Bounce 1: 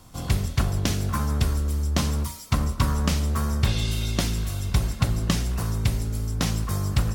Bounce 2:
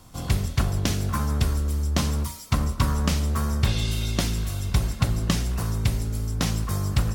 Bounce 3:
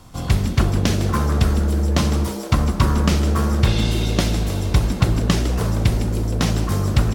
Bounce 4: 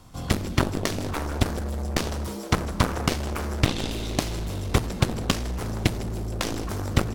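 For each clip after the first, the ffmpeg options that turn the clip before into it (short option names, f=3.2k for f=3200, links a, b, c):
-af anull
-filter_complex "[0:a]highshelf=f=6.6k:g=-7,asplit=2[a][b];[b]asplit=7[c][d][e][f][g][h][i];[c]adelay=156,afreqshift=130,volume=-12dB[j];[d]adelay=312,afreqshift=260,volume=-16.2dB[k];[e]adelay=468,afreqshift=390,volume=-20.3dB[l];[f]adelay=624,afreqshift=520,volume=-24.5dB[m];[g]adelay=780,afreqshift=650,volume=-28.6dB[n];[h]adelay=936,afreqshift=780,volume=-32.8dB[o];[i]adelay=1092,afreqshift=910,volume=-36.9dB[p];[j][k][l][m][n][o][p]amix=inputs=7:normalize=0[q];[a][q]amix=inputs=2:normalize=0,volume=5.5dB"
-af "aeval=exprs='0.891*(cos(1*acos(clip(val(0)/0.891,-1,1)))-cos(1*PI/2))+0.251*(cos(7*acos(clip(val(0)/0.891,-1,1)))-cos(7*PI/2))':c=same,volume=-5dB"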